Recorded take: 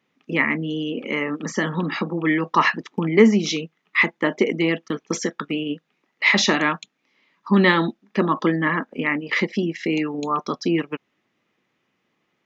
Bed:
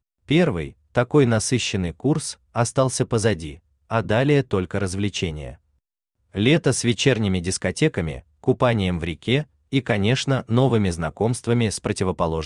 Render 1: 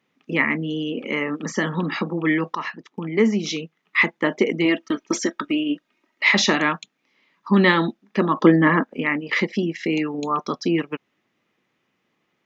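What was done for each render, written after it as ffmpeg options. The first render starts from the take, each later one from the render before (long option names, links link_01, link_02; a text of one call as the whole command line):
ffmpeg -i in.wav -filter_complex "[0:a]asettb=1/sr,asplit=3[link_01][link_02][link_03];[link_01]atrim=end=4.654[link_04];[link_02]atrim=start=4.65:end=6.23,asetpts=PTS-STARTPTS,afade=type=in:duration=0.004:curve=qsin,afade=type=out:start_time=1.576:duration=0.004:curve=qsin,aecho=1:1:3.2:0.65,atrim=end_sample=69678[link_05];[link_03]atrim=start=6.226[link_06];[link_04][link_05]acrossfade=duration=0.004:curve1=hsin:curve2=qsin[link_07];[link_07][link_06]acrossfade=duration=0.004:curve1=qsin:curve2=hsin,asettb=1/sr,asplit=3[link_08][link_09][link_10];[link_08]atrim=end=8.414[link_11];[link_09]atrim=start=8.41:end=8.84,asetpts=PTS-STARTPTS,afade=type=in:duration=0.004:curve=qsin,afade=type=out:start_time=0.426:duration=0.004:curve=qsin,equalizer=frequency=340:width=0.31:gain=7[link_12];[link_10]atrim=start=8.836[link_13];[link_11][link_12]acrossfade=duration=0.004:curve1=hsin:curve2=qsin[link_14];[link_14][link_13]acrossfade=duration=0.004:curve1=qsin:curve2=hsin,asplit=2[link_15][link_16];[link_15]atrim=end=2.55,asetpts=PTS-STARTPTS,afade=type=out:start_time=2.546:duration=0.004:curve=hsin:silence=0.211349[link_17];[link_16]atrim=start=2.55,asetpts=PTS-STARTPTS,afade=type=in:duration=1.42:silence=0.211349[link_18];[link_17][link_18]concat=n=2:v=0:a=1" out.wav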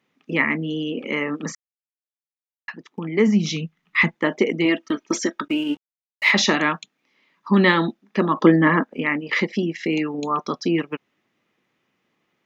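ffmpeg -i in.wav -filter_complex "[0:a]asplit=3[link_01][link_02][link_03];[link_01]afade=type=out:start_time=3.27:duration=0.02[link_04];[link_02]asubboost=boost=10.5:cutoff=130,afade=type=in:start_time=3.27:duration=0.02,afade=type=out:start_time=4.14:duration=0.02[link_05];[link_03]afade=type=in:start_time=4.14:duration=0.02[link_06];[link_04][link_05][link_06]amix=inputs=3:normalize=0,asettb=1/sr,asplit=3[link_07][link_08][link_09];[link_07]atrim=end=5.484[link_10];[link_08]atrim=start=5.48:end=6.31,asetpts=PTS-STARTPTS,afade=type=in:duration=0.004:curve=qsin,afade=type=out:start_time=0.826:duration=0.004:curve=qsin,aeval=exprs='sgn(val(0))*max(abs(val(0))-0.0075,0)':channel_layout=same[link_11];[link_09]atrim=start=6.306[link_12];[link_10][link_11]acrossfade=duration=0.004:curve1=hsin:curve2=qsin[link_13];[link_13][link_12]acrossfade=duration=0.004:curve1=qsin:curve2=hsin,asplit=3[link_14][link_15][link_16];[link_14]atrim=end=1.55,asetpts=PTS-STARTPTS,afade=type=out:start_time=1.546:duration=0.004:curve=hsin[link_17];[link_15]atrim=start=1.55:end=2.68,asetpts=PTS-STARTPTS,volume=0[link_18];[link_16]atrim=start=2.68,asetpts=PTS-STARTPTS,afade=type=in:duration=0.004:curve=hsin[link_19];[link_17][link_18][link_19]concat=n=3:v=0:a=1" out.wav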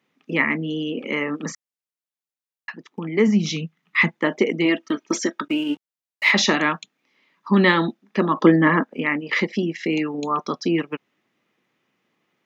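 ffmpeg -i in.wav -af "highpass=100" out.wav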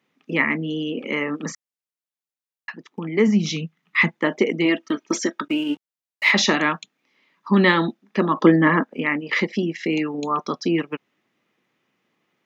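ffmpeg -i in.wav -af anull out.wav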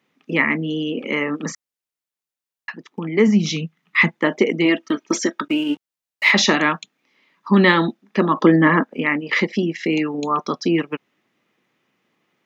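ffmpeg -i in.wav -af "volume=2.5dB,alimiter=limit=-3dB:level=0:latency=1" out.wav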